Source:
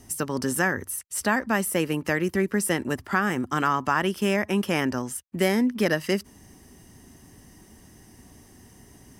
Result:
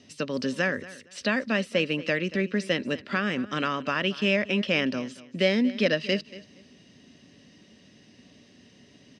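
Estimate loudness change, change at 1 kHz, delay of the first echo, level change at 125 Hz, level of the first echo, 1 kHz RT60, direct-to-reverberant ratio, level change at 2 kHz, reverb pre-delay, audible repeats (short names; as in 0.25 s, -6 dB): -1.5 dB, -7.5 dB, 0.233 s, -3.0 dB, -18.0 dB, none, none, -0.5 dB, none, 2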